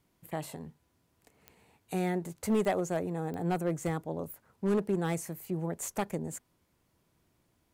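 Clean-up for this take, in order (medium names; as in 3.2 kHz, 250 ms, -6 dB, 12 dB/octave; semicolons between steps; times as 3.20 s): clip repair -22 dBFS; de-click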